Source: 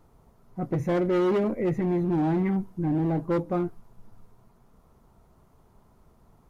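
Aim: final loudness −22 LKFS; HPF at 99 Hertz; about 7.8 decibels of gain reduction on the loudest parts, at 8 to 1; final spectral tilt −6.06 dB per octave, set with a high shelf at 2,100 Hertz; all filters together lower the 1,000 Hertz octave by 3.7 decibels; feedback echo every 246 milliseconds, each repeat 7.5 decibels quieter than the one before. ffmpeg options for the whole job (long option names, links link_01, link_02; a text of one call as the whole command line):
ffmpeg -i in.wav -af "highpass=99,equalizer=frequency=1000:width_type=o:gain=-3.5,highshelf=frequency=2100:gain=-8,acompressor=threshold=-30dB:ratio=8,aecho=1:1:246|492|738|984|1230:0.422|0.177|0.0744|0.0312|0.0131,volume=12dB" out.wav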